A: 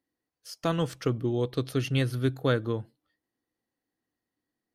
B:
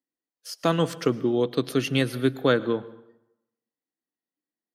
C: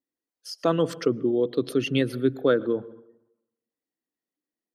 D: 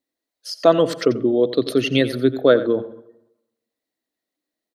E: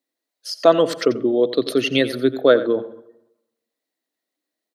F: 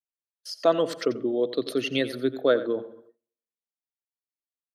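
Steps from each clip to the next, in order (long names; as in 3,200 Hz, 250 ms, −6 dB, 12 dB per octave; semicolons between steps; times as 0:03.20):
high-pass filter 160 Hz 24 dB per octave; noise reduction from a noise print of the clip's start 15 dB; dense smooth reverb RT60 0.88 s, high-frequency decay 0.7×, pre-delay 95 ms, DRR 18 dB; level +5.5 dB
spectral envelope exaggerated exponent 1.5
thirty-one-band graphic EQ 160 Hz −5 dB, 630 Hz +9 dB, 2,000 Hz +4 dB, 4,000 Hz +8 dB; single-tap delay 88 ms −14.5 dB; level +5 dB
high-pass filter 270 Hz 6 dB per octave; level +1.5 dB
noise gate with hold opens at −37 dBFS; level −7.5 dB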